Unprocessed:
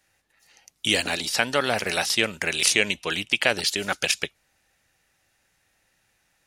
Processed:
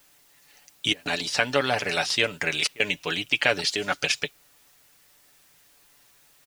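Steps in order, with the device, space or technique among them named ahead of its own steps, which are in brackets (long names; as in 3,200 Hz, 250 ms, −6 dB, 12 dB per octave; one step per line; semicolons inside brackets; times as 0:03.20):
worn cassette (low-pass filter 6,600 Hz 12 dB per octave; tape wow and flutter; tape dropouts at 0:00.93/0:02.67, 126 ms −22 dB; white noise bed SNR 30 dB)
comb filter 6.9 ms, depth 54%
level −1.5 dB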